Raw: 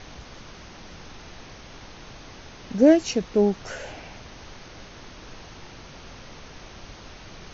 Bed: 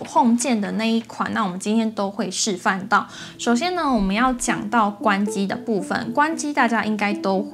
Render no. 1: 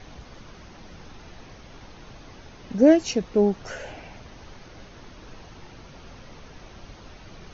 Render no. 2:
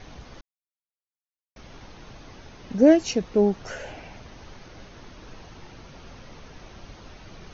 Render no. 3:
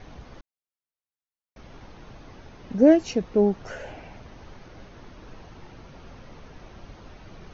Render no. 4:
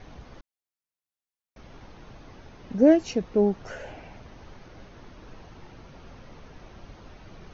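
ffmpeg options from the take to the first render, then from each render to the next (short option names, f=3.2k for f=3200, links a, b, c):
-af "afftdn=nr=6:nf=-45"
-filter_complex "[0:a]asplit=3[a][b][c];[a]atrim=end=0.41,asetpts=PTS-STARTPTS,afade=t=out:st=0.406:d=0.004:c=hsin[d];[b]atrim=start=0.41:end=1.56,asetpts=PTS-STARTPTS,volume=0[e];[c]atrim=start=1.56,asetpts=PTS-STARTPTS,afade=t=in:d=0.004:c=hsin[f];[d][e][f]concat=n=3:v=0:a=1"
-af "highshelf=f=2.8k:g=-8"
-af "volume=-1.5dB"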